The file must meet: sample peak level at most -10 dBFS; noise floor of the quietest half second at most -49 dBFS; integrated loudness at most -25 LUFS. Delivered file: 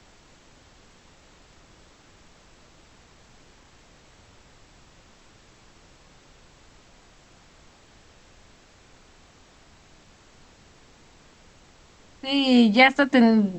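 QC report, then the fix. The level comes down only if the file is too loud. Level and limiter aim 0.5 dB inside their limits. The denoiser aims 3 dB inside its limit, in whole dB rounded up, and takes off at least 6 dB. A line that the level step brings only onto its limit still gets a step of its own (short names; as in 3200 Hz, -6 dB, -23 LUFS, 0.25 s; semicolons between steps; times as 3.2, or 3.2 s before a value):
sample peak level -3.5 dBFS: fail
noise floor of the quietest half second -54 dBFS: OK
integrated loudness -18.5 LUFS: fail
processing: gain -7 dB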